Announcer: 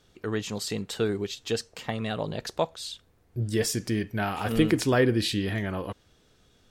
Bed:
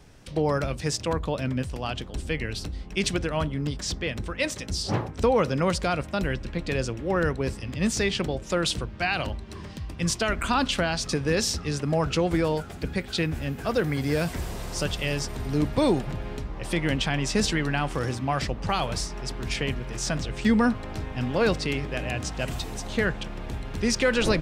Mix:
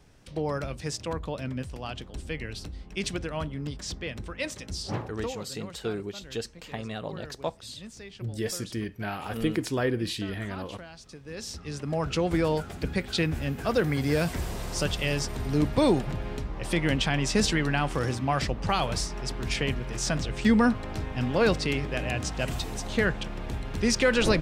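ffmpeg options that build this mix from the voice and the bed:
-filter_complex "[0:a]adelay=4850,volume=-5dB[a];[1:a]volume=14dB,afade=t=out:st=5.09:d=0.27:silence=0.199526,afade=t=in:st=11.24:d=1.34:silence=0.105925[b];[a][b]amix=inputs=2:normalize=0"

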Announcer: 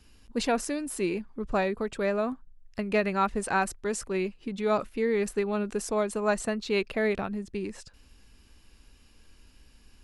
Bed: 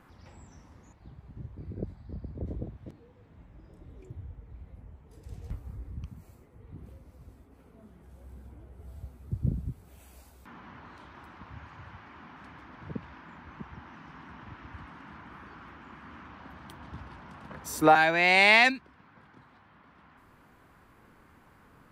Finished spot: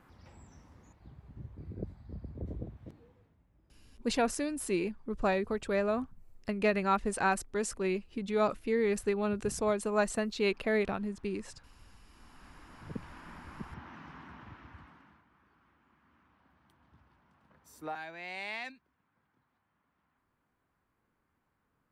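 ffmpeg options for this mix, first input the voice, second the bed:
-filter_complex "[0:a]adelay=3700,volume=-2.5dB[a];[1:a]volume=12.5dB,afade=t=out:st=3.04:d=0.34:silence=0.223872,afade=t=in:st=12.09:d=1.25:silence=0.158489,afade=t=out:st=14.03:d=1.22:silence=0.1[b];[a][b]amix=inputs=2:normalize=0"

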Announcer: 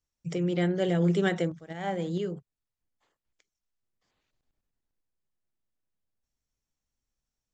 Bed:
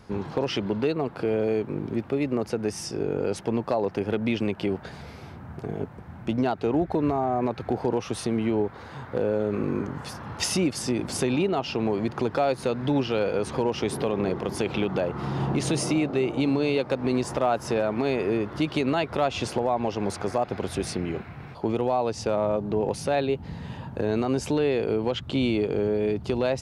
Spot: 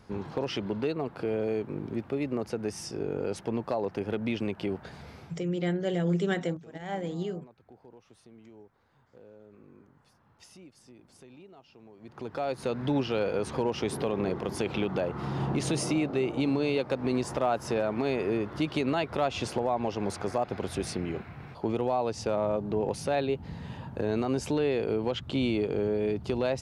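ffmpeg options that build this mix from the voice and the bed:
-filter_complex "[0:a]adelay=5050,volume=-2.5dB[a];[1:a]volume=19dB,afade=t=out:st=5.19:d=0.24:silence=0.0749894,afade=t=in:st=11.99:d=0.8:silence=0.0630957[b];[a][b]amix=inputs=2:normalize=0"

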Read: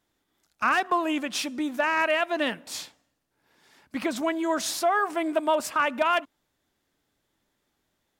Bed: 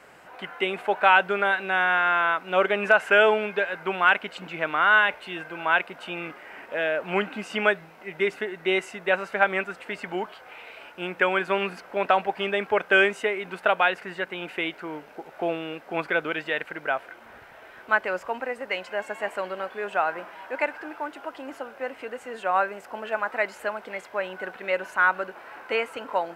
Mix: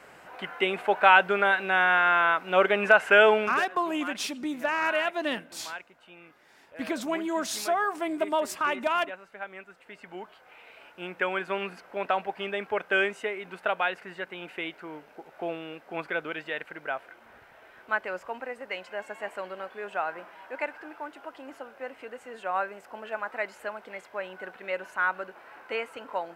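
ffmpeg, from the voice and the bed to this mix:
-filter_complex "[0:a]adelay=2850,volume=-3dB[a];[1:a]volume=11.5dB,afade=t=out:st=3.41:d=0.24:silence=0.133352,afade=t=in:st=9.6:d=1.43:silence=0.266073[b];[a][b]amix=inputs=2:normalize=0"

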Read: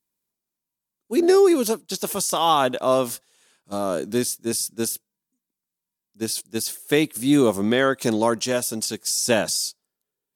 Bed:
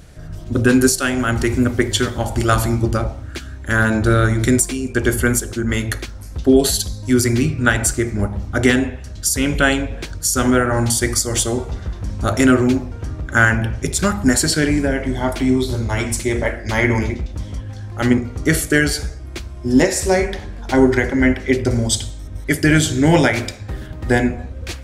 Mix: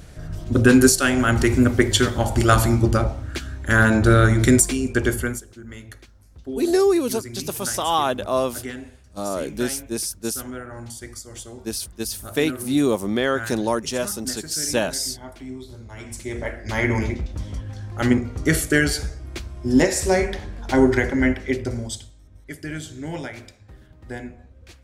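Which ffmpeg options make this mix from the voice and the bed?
-filter_complex "[0:a]adelay=5450,volume=-2dB[a];[1:a]volume=16dB,afade=t=out:st=4.83:d=0.61:silence=0.112202,afade=t=in:st=15.94:d=1.19:silence=0.158489,afade=t=out:st=21.07:d=1.03:silence=0.177828[b];[a][b]amix=inputs=2:normalize=0"

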